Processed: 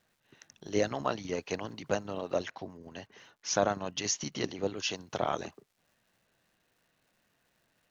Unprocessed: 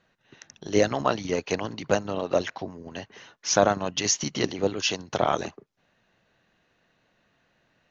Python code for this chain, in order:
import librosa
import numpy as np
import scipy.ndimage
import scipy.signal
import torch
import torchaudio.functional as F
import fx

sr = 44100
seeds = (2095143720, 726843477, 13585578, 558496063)

y = fx.dmg_crackle(x, sr, seeds[0], per_s=fx.steps((0.0, 490.0), (2.48, 210.0), (4.77, 580.0)), level_db=-55.0)
y = y * 10.0 ** (-7.5 / 20.0)